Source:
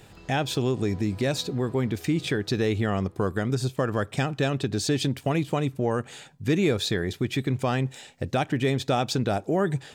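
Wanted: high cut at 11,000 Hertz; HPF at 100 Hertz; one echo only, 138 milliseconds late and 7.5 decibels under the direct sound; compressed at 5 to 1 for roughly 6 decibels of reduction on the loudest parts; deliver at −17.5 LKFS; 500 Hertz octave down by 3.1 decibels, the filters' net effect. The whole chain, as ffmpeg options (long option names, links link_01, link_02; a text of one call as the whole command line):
ffmpeg -i in.wav -af "highpass=100,lowpass=11000,equalizer=frequency=500:width_type=o:gain=-4,acompressor=threshold=-28dB:ratio=5,aecho=1:1:138:0.422,volume=15dB" out.wav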